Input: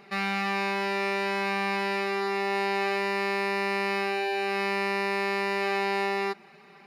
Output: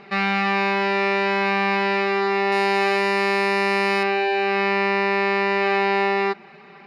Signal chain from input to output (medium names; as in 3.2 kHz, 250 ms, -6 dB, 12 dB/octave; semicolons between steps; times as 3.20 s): low-pass 4.2 kHz 12 dB/octave, from 2.52 s 11 kHz, from 4.03 s 3.7 kHz; trim +7.5 dB